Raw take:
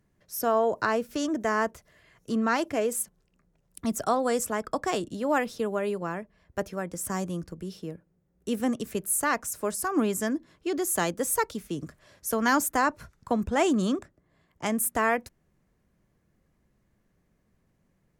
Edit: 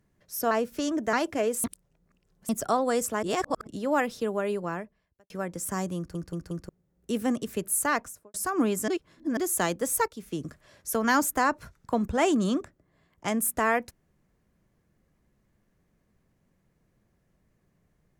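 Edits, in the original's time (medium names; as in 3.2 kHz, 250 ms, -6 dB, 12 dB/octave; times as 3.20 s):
0.51–0.88 s: delete
1.50–2.51 s: delete
3.02–3.87 s: reverse
4.61–5.05 s: reverse
6.15–6.68 s: fade out quadratic
7.35 s: stutter in place 0.18 s, 4 plays
9.31–9.72 s: studio fade out
10.26–10.75 s: reverse
11.46–11.71 s: fade in, from -14.5 dB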